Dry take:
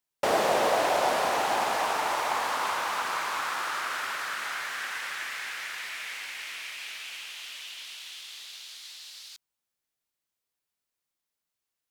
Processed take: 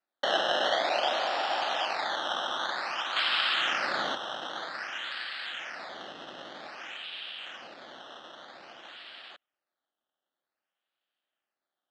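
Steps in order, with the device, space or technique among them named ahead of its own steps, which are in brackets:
0:03.16–0:04.15: meter weighting curve D
circuit-bent sampling toy (sample-and-hold swept by an LFO 13×, swing 100% 0.52 Hz; loudspeaker in its box 430–4,600 Hz, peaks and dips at 440 Hz −9 dB, 1,000 Hz −8 dB, 2,200 Hz −6 dB, 3,100 Hz +6 dB)

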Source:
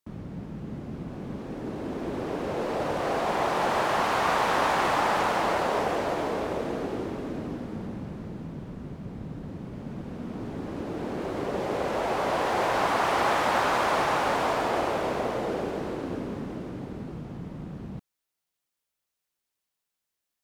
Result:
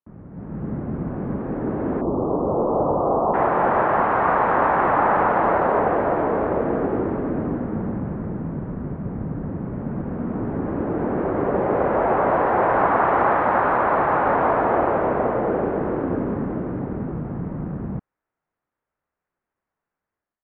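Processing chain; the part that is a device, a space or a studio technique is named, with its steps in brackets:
0:02.01–0:03.34: Butterworth low-pass 1,200 Hz 72 dB per octave
action camera in a waterproof case (low-pass filter 1,700 Hz 24 dB per octave; automatic gain control gain up to 14 dB; level −4.5 dB; AAC 96 kbit/s 48,000 Hz)

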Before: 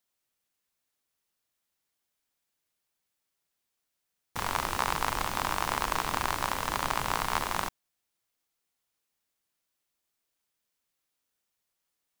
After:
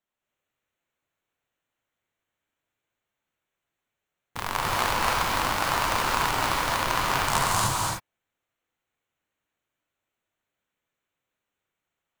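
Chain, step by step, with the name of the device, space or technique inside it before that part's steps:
adaptive Wiener filter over 9 samples
0:07.28–0:07.68: graphic EQ with 10 bands 125 Hz +11 dB, 500 Hz −4 dB, 1,000 Hz +4 dB, 2,000 Hz −6 dB, 8,000 Hz +11 dB
presence and air boost (parametric band 4,000 Hz +2.5 dB 1.9 octaves; high-shelf EQ 11,000 Hz +6.5 dB)
reverb whose tail is shaped and stops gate 320 ms rising, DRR −4 dB

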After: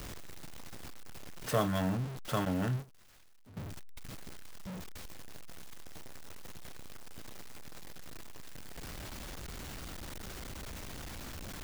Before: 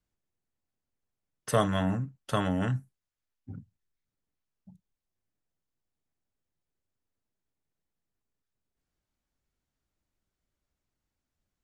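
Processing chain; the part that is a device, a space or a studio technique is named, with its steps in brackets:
early CD player with a faulty converter (converter with a step at zero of −30 dBFS; converter with an unsteady clock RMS 0.022 ms)
0:02.45–0:03.57: noise gate −30 dBFS, range −15 dB
level −6 dB

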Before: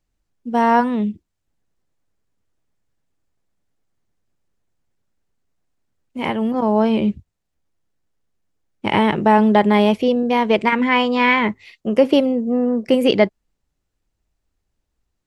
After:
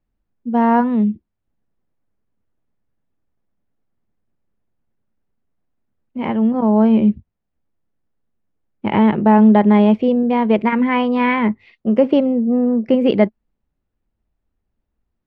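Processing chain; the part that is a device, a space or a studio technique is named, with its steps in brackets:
phone in a pocket (low-pass filter 3,700 Hz 12 dB per octave; parametric band 220 Hz +6 dB 0.33 octaves; high-shelf EQ 2,300 Hz −10 dB)

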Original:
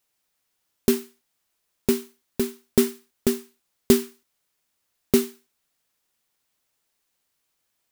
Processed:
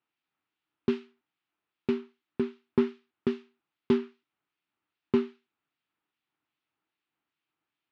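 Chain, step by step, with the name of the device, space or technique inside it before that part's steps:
guitar amplifier with harmonic tremolo (two-band tremolo in antiphase 2.5 Hz, depth 50%, crossover 2,000 Hz; soft clipping −10 dBFS, distortion −17 dB; loudspeaker in its box 88–3,500 Hz, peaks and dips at 140 Hz +5 dB, 310 Hz +10 dB, 540 Hz −7 dB, 860 Hz +3 dB, 1,300 Hz +5 dB, 2,600 Hz +3 dB)
level −5 dB

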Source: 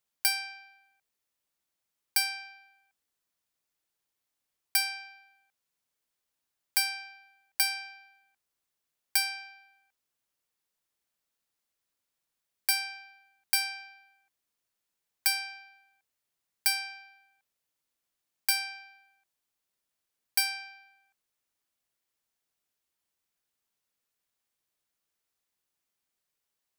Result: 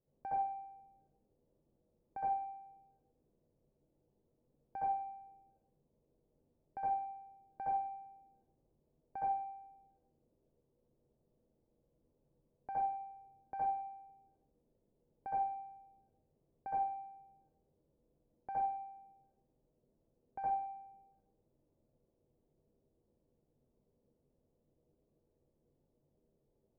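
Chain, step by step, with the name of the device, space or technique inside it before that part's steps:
next room (low-pass filter 510 Hz 24 dB per octave; convolution reverb RT60 0.50 s, pre-delay 62 ms, DRR −7.5 dB)
level +13.5 dB

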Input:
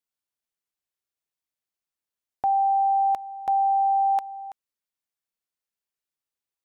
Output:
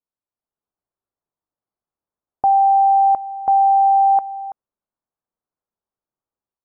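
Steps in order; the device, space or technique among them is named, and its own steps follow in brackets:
action camera in a waterproof case (low-pass filter 1,200 Hz 24 dB per octave; automatic gain control gain up to 6.5 dB; level +1.5 dB; AAC 48 kbit/s 44,100 Hz)

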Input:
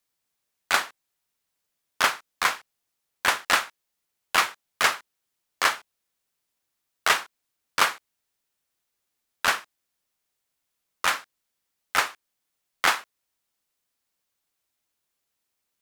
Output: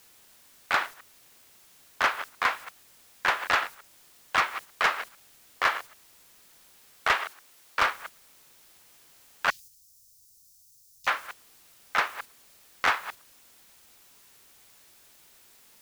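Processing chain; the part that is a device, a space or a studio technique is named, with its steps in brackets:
delay that plays each chunk backwards 112 ms, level −13.5 dB
aircraft radio (band-pass filter 360–2,700 Hz; hard clipping −16 dBFS, distortion −13 dB; white noise bed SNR 18 dB; noise gate −39 dBFS, range −6 dB)
0:07.15–0:07.79: low-shelf EQ 220 Hz −9 dB
0:09.50–0:11.07: Chebyshev band-stop filter 120–5,400 Hz, order 3

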